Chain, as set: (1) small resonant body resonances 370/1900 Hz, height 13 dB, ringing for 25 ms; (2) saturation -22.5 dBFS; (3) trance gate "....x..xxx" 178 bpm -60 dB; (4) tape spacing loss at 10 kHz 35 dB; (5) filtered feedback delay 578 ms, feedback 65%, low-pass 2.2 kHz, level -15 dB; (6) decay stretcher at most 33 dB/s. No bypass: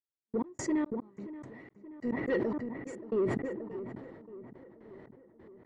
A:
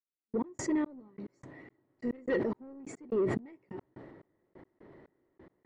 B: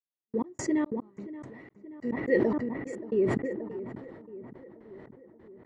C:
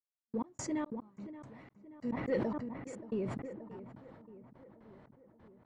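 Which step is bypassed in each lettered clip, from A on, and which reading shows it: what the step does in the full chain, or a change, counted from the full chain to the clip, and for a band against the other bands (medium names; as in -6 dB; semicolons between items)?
5, crest factor change +2.5 dB; 2, distortion -13 dB; 1, 2 kHz band -4.0 dB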